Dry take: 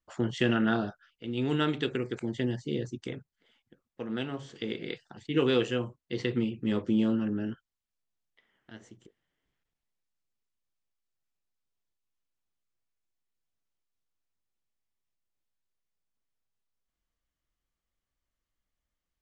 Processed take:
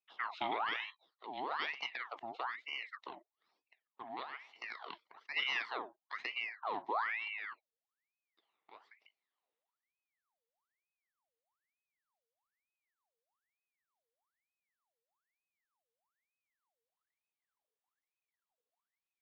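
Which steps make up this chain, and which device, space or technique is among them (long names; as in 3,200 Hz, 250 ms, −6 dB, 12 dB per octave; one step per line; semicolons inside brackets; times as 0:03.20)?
voice changer toy (ring modulator whose carrier an LFO sweeps 1,500 Hz, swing 70%, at 1.1 Hz; loudspeaker in its box 460–3,900 Hz, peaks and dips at 560 Hz −7 dB, 1,500 Hz −8 dB, 2,500 Hz −7 dB)
level −4 dB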